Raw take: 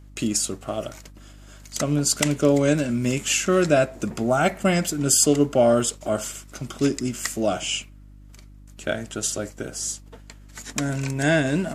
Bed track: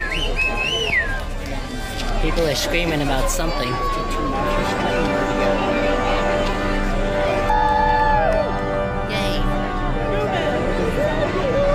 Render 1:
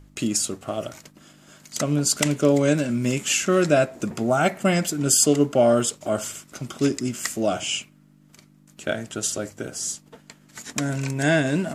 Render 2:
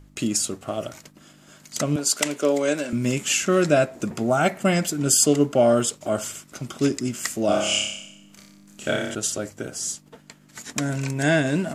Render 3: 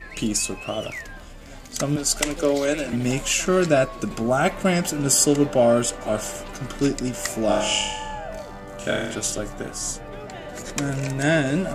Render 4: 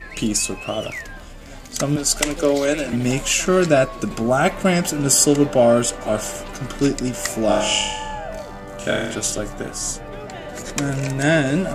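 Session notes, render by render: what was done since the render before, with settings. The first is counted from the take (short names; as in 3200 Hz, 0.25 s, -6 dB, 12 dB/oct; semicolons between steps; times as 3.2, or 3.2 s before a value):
de-hum 50 Hz, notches 2
1.96–2.93 HPF 360 Hz; 7.46–9.15 flutter echo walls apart 5.1 m, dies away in 0.78 s
add bed track -16 dB
gain +3 dB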